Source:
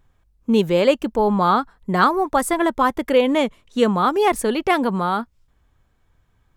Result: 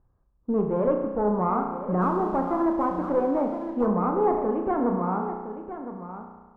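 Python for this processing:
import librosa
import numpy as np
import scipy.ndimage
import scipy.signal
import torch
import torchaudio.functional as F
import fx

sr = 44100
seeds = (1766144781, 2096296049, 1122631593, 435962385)

p1 = fx.clip_asym(x, sr, top_db=-19.5, bottom_db=-9.5)
p2 = scipy.signal.sosfilt(scipy.signal.butter(4, 1200.0, 'lowpass', fs=sr, output='sos'), p1)
p3 = p2 + fx.echo_single(p2, sr, ms=1013, db=-11.0, dry=0)
p4 = fx.rev_spring(p3, sr, rt60_s=1.3, pass_ms=(33,), chirp_ms=35, drr_db=3.0)
p5 = fx.backlash(p4, sr, play_db=-45.0, at=(2.0, 3.85), fade=0.02)
y = p5 * 10.0 ** (-6.0 / 20.0)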